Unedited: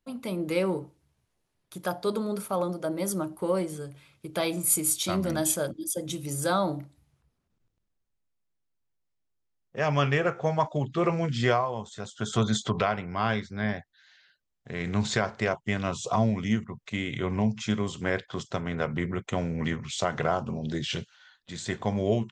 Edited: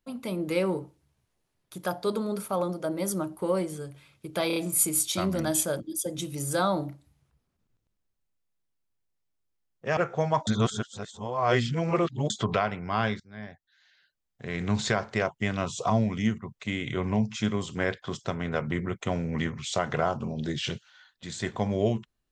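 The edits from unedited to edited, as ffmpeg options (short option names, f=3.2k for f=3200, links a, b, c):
-filter_complex "[0:a]asplit=8[a][b][c][d][e][f][g][h];[a]atrim=end=4.502[i];[b]atrim=start=4.468:end=4.502[j];[c]atrim=start=4.468:end=4.502[k];[d]atrim=start=4.468:end=9.882[l];[e]atrim=start=10.228:end=10.732[m];[f]atrim=start=10.728:end=12.562,asetpts=PTS-STARTPTS,areverse[n];[g]atrim=start=12.558:end=13.46,asetpts=PTS-STARTPTS,afade=t=out:st=0.898:d=0.004:c=hsin:silence=0.105925[o];[h]atrim=start=13.46,asetpts=PTS-STARTPTS,afade=t=in:d=1.28:silence=0.105925[p];[i][j]acrossfade=d=0.004:c1=hsin:c2=hsin[q];[q][k]acrossfade=d=0.004:c1=hsin:c2=hsin[r];[r][l]acrossfade=d=0.004:c1=hsin:c2=hsin[s];[s][m]acrossfade=d=0.004:c1=hsin:c2=hsin[t];[t][n]acrossfade=d=0.004:c1=hsin:c2=hsin[u];[o][p]concat=n=2:v=0:a=1[v];[u][v]acrossfade=d=0.004:c1=hsin:c2=hsin"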